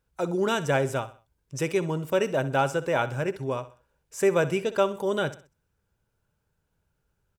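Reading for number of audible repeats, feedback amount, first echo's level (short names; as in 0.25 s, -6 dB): 3, 37%, -15.5 dB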